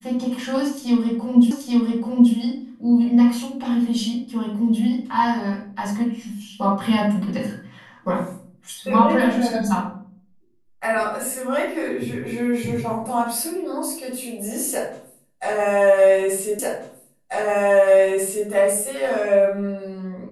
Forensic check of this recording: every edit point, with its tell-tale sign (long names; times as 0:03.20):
0:01.51: the same again, the last 0.83 s
0:16.59: the same again, the last 1.89 s